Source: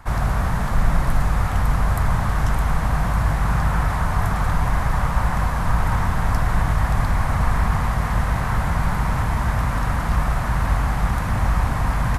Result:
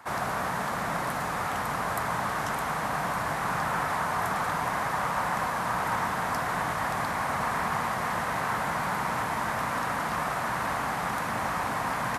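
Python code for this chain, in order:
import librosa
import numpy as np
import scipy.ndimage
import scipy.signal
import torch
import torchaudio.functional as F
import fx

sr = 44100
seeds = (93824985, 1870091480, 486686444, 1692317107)

y = scipy.signal.sosfilt(scipy.signal.butter(2, 290.0, 'highpass', fs=sr, output='sos'), x)
y = F.gain(torch.from_numpy(y), -1.5).numpy()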